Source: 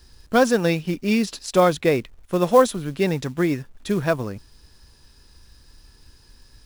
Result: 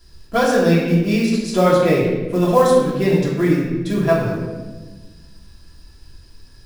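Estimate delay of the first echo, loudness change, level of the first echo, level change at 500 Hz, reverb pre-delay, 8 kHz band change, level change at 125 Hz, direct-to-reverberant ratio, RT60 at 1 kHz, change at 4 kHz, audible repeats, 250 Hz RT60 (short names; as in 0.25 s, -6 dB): none, +4.0 dB, none, +4.0 dB, 3 ms, +0.5 dB, +7.5 dB, -7.5 dB, 1.1 s, +2.0 dB, none, 2.0 s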